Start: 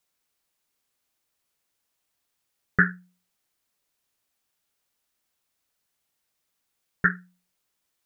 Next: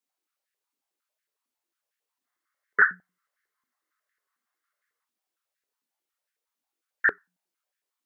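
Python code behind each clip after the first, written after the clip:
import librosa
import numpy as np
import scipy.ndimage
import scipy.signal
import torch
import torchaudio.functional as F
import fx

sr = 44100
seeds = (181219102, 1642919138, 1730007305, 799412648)

y = fx.chorus_voices(x, sr, voices=2, hz=0.29, base_ms=28, depth_ms=3.8, mix_pct=40)
y = fx.spec_box(y, sr, start_s=2.25, length_s=2.79, low_hz=1000.0, high_hz=2200.0, gain_db=10)
y = fx.filter_held_highpass(y, sr, hz=11.0, low_hz=250.0, high_hz=1700.0)
y = F.gain(torch.from_numpy(y), -7.0).numpy()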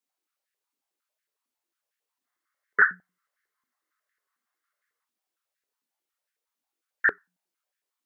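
y = x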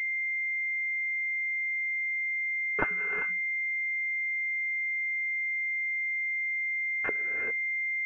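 y = fx.rev_gated(x, sr, seeds[0], gate_ms=430, shape='rising', drr_db=3.5)
y = fx.pwm(y, sr, carrier_hz=2100.0)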